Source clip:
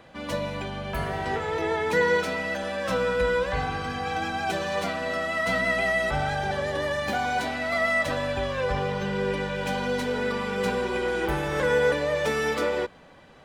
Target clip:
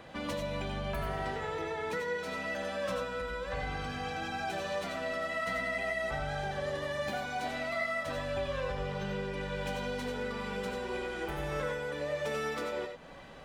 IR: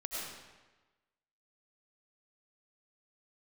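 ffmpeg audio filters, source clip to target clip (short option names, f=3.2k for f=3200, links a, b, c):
-filter_complex "[0:a]acompressor=threshold=-35dB:ratio=6[a];[1:a]atrim=start_sample=2205,atrim=end_sample=4410[b];[a][b]afir=irnorm=-1:irlink=0,volume=4.5dB"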